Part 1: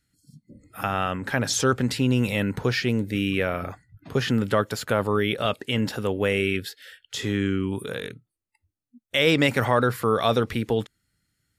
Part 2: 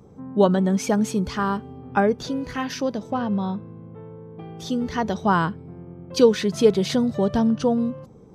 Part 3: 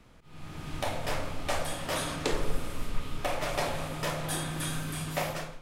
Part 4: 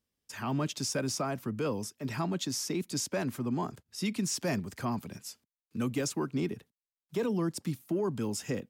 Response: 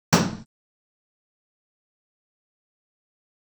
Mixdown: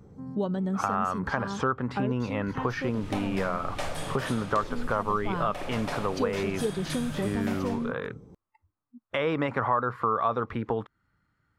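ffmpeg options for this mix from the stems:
-filter_complex "[0:a]crystalizer=i=5:c=0,lowpass=frequency=1100:width_type=q:width=3.7,volume=1.5dB[link_01];[1:a]lowshelf=frequency=200:gain=7.5,volume=-6dB[link_02];[2:a]highshelf=frequency=12000:gain=-9.5,adelay=2300,volume=2.5dB[link_03];[link_01][link_02][link_03]amix=inputs=3:normalize=0,acompressor=threshold=-29dB:ratio=2.5"

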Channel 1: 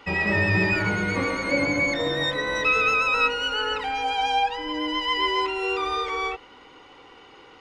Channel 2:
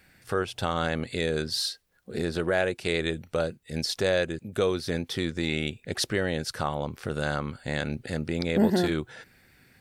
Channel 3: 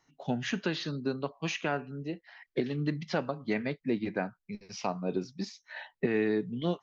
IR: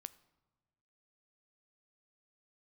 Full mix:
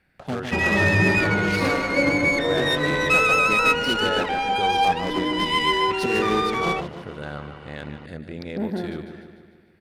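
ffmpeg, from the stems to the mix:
-filter_complex "[0:a]adelay=450,volume=3dB[link_01];[1:a]aexciter=amount=5:drive=6.8:freq=9800,volume=-5.5dB,asplit=2[link_02][link_03];[link_03]volume=-9dB[link_04];[2:a]acrusher=bits=6:dc=4:mix=0:aa=0.000001,highpass=62,acompressor=mode=upward:threshold=-36dB:ratio=2.5,volume=-0.5dB,asplit=3[link_05][link_06][link_07];[link_06]volume=-8dB[link_08];[link_07]volume=-4.5dB[link_09];[3:a]atrim=start_sample=2205[link_10];[link_08][link_10]afir=irnorm=-1:irlink=0[link_11];[link_04][link_09]amix=inputs=2:normalize=0,aecho=0:1:149|298|447|596|745|894|1043|1192:1|0.56|0.314|0.176|0.0983|0.0551|0.0308|0.0173[link_12];[link_01][link_02][link_05][link_11][link_12]amix=inputs=5:normalize=0,adynamicsmooth=sensitivity=2:basefreq=3700"

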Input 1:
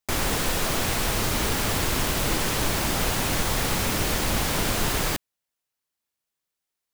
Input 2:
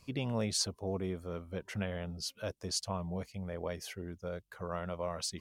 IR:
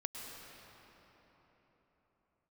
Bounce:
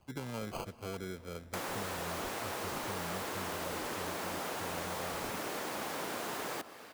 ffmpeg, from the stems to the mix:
-filter_complex "[0:a]highpass=380,adelay=1450,volume=-7dB,asplit=2[link_01][link_02];[link_02]volume=-10.5dB[link_03];[1:a]acrusher=samples=24:mix=1:aa=0.000001,volume=-4.5dB,asplit=2[link_04][link_05];[link_05]volume=-15dB[link_06];[2:a]atrim=start_sample=2205[link_07];[link_03][link_06]amix=inputs=2:normalize=0[link_08];[link_08][link_07]afir=irnorm=-1:irlink=0[link_09];[link_01][link_04][link_09]amix=inputs=3:normalize=0,acrossover=split=280|1700[link_10][link_11][link_12];[link_10]acompressor=threshold=-43dB:ratio=4[link_13];[link_11]acompressor=threshold=-38dB:ratio=4[link_14];[link_12]acompressor=threshold=-45dB:ratio=4[link_15];[link_13][link_14][link_15]amix=inputs=3:normalize=0"

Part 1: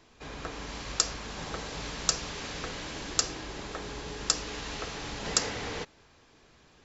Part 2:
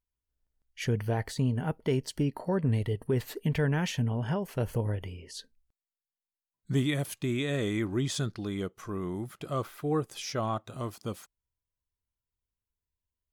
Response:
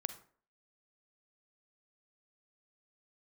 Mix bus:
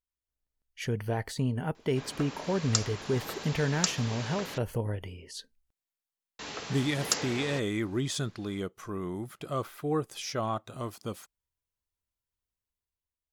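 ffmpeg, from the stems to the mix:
-filter_complex "[0:a]highpass=110,adelay=1750,volume=-7dB,asplit=3[link_01][link_02][link_03];[link_01]atrim=end=4.58,asetpts=PTS-STARTPTS,afade=type=out:start_time=4.576:duration=0.004:curve=hsin[link_04];[link_02]atrim=start=4.58:end=6.39,asetpts=PTS-STARTPTS,volume=0[link_05];[link_03]atrim=start=6.39,asetpts=PTS-STARTPTS,afade=type=in:duration=0.004:curve=hsin[link_06];[link_04][link_05][link_06]concat=n=3:v=0:a=1[link_07];[1:a]volume=-5dB[link_08];[link_07][link_08]amix=inputs=2:normalize=0,lowshelf=frequency=220:gain=-3.5,dynaudnorm=framelen=220:gausssize=7:maxgain=5.5dB"

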